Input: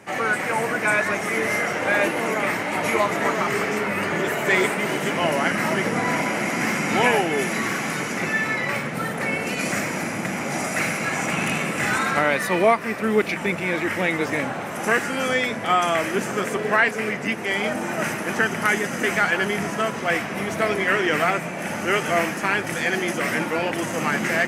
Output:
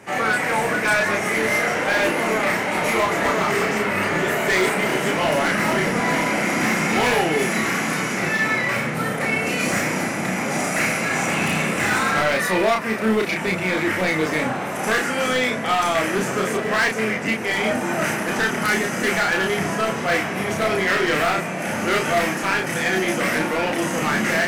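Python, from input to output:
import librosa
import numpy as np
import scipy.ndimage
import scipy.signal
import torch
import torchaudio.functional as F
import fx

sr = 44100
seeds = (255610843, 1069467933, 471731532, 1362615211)

y = np.clip(10.0 ** (18.5 / 20.0) * x, -1.0, 1.0) / 10.0 ** (18.5 / 20.0)
y = fx.doubler(y, sr, ms=32.0, db=-3.0)
y = y * librosa.db_to_amplitude(1.5)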